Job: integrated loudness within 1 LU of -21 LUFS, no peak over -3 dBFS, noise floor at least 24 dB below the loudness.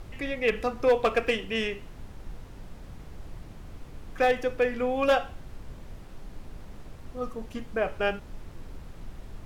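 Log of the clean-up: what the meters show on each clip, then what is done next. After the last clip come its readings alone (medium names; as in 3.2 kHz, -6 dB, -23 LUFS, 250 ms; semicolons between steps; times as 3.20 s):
clipped samples 0.3%; clipping level -15.5 dBFS; noise floor -46 dBFS; noise floor target -52 dBFS; loudness -27.5 LUFS; peak level -15.5 dBFS; loudness target -21.0 LUFS
-> clip repair -15.5 dBFS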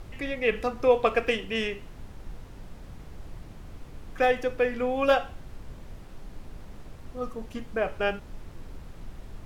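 clipped samples 0.0%; noise floor -46 dBFS; noise floor target -51 dBFS
-> noise print and reduce 6 dB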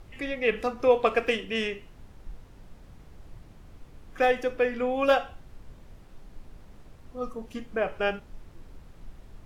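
noise floor -51 dBFS; loudness -27.0 LUFS; peak level -9.5 dBFS; loudness target -21.0 LUFS
-> trim +6 dB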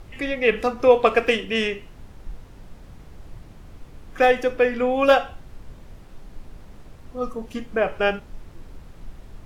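loudness -21.0 LUFS; peak level -3.5 dBFS; noise floor -45 dBFS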